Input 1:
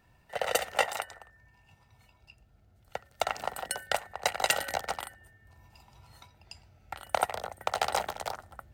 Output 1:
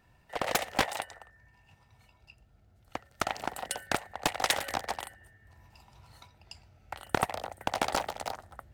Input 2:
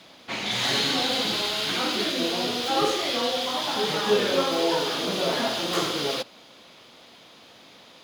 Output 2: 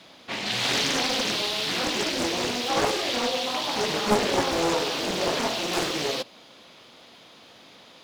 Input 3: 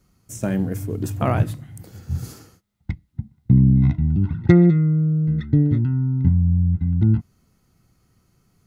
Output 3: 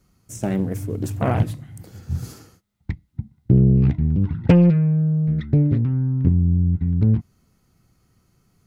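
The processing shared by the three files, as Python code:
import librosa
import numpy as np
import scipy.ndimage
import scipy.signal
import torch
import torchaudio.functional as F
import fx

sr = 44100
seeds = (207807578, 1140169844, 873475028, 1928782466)

y = fx.dynamic_eq(x, sr, hz=1400.0, q=4.6, threshold_db=-50.0, ratio=4.0, max_db=-6)
y = fx.doppler_dist(y, sr, depth_ms=0.95)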